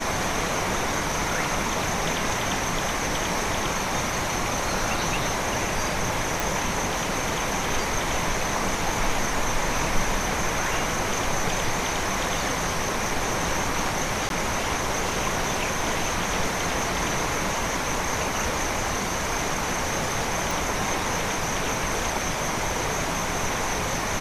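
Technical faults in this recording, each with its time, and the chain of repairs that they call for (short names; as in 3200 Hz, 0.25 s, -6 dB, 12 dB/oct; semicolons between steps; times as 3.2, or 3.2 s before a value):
6.4 pop
14.29–14.3 gap 12 ms
20.51 pop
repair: de-click; interpolate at 14.29, 12 ms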